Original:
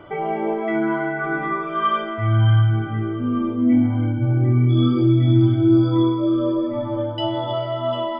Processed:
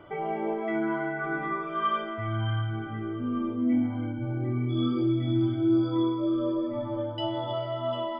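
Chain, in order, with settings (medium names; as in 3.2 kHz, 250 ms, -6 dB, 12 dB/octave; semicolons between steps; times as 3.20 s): dynamic bell 110 Hz, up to -7 dB, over -29 dBFS, Q 1.1; trim -7 dB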